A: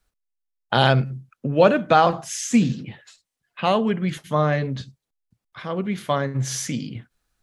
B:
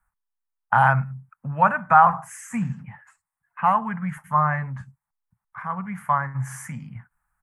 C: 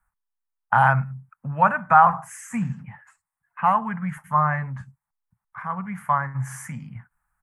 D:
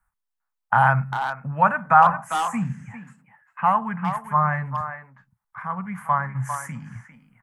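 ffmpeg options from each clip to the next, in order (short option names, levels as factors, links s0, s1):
-af "firequalizer=gain_entry='entry(180,0);entry(340,-26);entry(880,11);entry(1900,3);entry(3700,-30);entry(8400,-1)':delay=0.05:min_phase=1,volume=0.708"
-af anull
-filter_complex "[0:a]asplit=2[s0][s1];[s1]adelay=400,highpass=300,lowpass=3400,asoftclip=type=hard:threshold=0.282,volume=0.398[s2];[s0][s2]amix=inputs=2:normalize=0"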